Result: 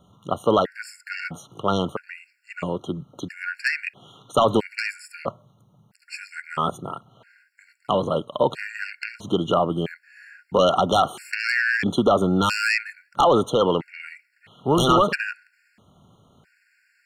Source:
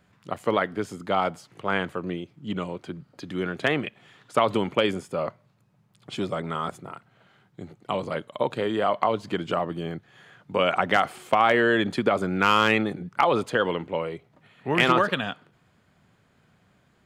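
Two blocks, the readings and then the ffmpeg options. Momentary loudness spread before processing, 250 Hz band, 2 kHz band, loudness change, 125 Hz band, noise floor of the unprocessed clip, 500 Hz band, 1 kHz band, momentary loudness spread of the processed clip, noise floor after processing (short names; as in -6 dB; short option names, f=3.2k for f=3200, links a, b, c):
17 LU, +2.5 dB, +1.0 dB, +2.5 dB, +4.0 dB, -64 dBFS, +2.5 dB, +1.5 dB, 17 LU, -65 dBFS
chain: -af "aeval=exprs='0.596*sin(PI/2*2.82*val(0)/0.596)':c=same,afftfilt=real='re*gt(sin(2*PI*0.76*pts/sr)*(1-2*mod(floor(b*sr/1024/1400),2)),0)':imag='im*gt(sin(2*PI*0.76*pts/sr)*(1-2*mod(floor(b*sr/1024/1400),2)),0)':win_size=1024:overlap=0.75,volume=-5.5dB"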